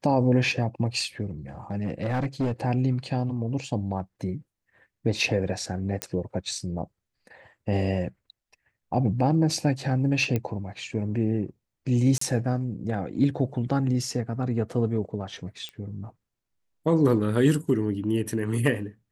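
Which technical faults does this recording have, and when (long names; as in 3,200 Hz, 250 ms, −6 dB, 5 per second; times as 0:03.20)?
0:01.71–0:02.52: clipping −21.5 dBFS
0:06.02: click −10 dBFS
0:10.36: click −14 dBFS
0:12.18–0:12.21: drop-out 34 ms
0:15.69: click −23 dBFS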